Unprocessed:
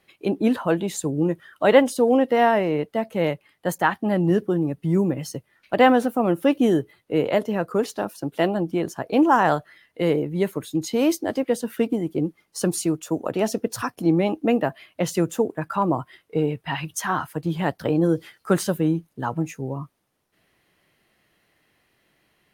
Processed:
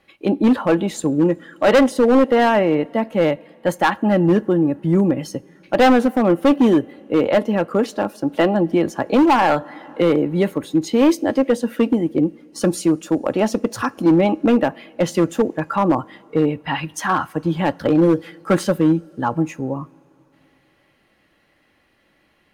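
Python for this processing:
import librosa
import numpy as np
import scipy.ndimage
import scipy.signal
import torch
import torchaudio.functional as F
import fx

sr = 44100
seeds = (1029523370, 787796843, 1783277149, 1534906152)

y = fx.lowpass(x, sr, hz=3400.0, slope=6)
y = y + 0.34 * np.pad(y, (int(3.6 * sr / 1000.0), 0))[:len(y)]
y = fx.rev_double_slope(y, sr, seeds[0], early_s=0.31, late_s=3.6, knee_db=-18, drr_db=18.5)
y = np.clip(y, -10.0 ** (-14.5 / 20.0), 10.0 ** (-14.5 / 20.0))
y = fx.band_squash(y, sr, depth_pct=40, at=(8.33, 10.53))
y = y * 10.0 ** (5.5 / 20.0)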